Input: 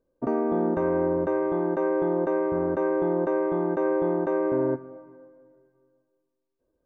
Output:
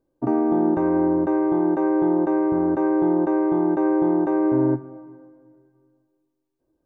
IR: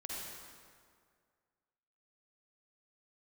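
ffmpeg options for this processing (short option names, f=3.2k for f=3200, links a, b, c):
-af "equalizer=f=125:t=o:w=0.33:g=11,equalizer=f=315:t=o:w=0.33:g=10,equalizer=f=500:t=o:w=0.33:g=-5,equalizer=f=800:t=o:w=0.33:g=8"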